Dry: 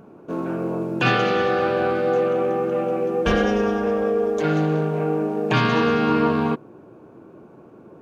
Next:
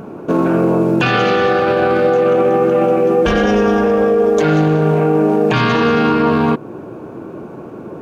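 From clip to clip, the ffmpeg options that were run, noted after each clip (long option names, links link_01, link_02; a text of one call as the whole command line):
ffmpeg -i in.wav -filter_complex "[0:a]asplit=2[link_01][link_02];[link_02]acompressor=threshold=-27dB:ratio=6,volume=1dB[link_03];[link_01][link_03]amix=inputs=2:normalize=0,alimiter=limit=-14.5dB:level=0:latency=1:release=18,volume=8.5dB" out.wav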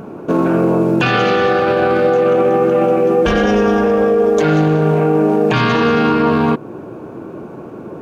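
ffmpeg -i in.wav -af anull out.wav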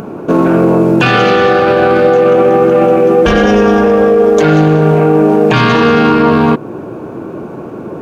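ffmpeg -i in.wav -filter_complex "[0:a]asplit=2[link_01][link_02];[link_02]asoftclip=type=tanh:threshold=-18.5dB,volume=-10.5dB[link_03];[link_01][link_03]amix=inputs=2:normalize=0,acompressor=mode=upward:threshold=-34dB:ratio=2.5,volume=4dB" out.wav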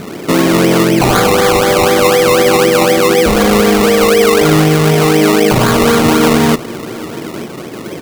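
ffmpeg -i in.wav -af "aecho=1:1:896:0.1,acrusher=samples=22:mix=1:aa=0.000001:lfo=1:lforange=13.2:lforate=4,volume=-1dB" out.wav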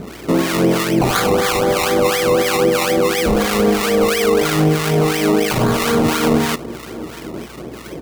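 ffmpeg -i in.wav -filter_complex "[0:a]acrossover=split=950[link_01][link_02];[link_01]aeval=exprs='val(0)*(1-0.7/2+0.7/2*cos(2*PI*3*n/s))':channel_layout=same[link_03];[link_02]aeval=exprs='val(0)*(1-0.7/2-0.7/2*cos(2*PI*3*n/s))':channel_layout=same[link_04];[link_03][link_04]amix=inputs=2:normalize=0,aeval=exprs='val(0)+0.01*(sin(2*PI*60*n/s)+sin(2*PI*2*60*n/s)/2+sin(2*PI*3*60*n/s)/3+sin(2*PI*4*60*n/s)/4+sin(2*PI*5*60*n/s)/5)':channel_layout=same,volume=-3dB" out.wav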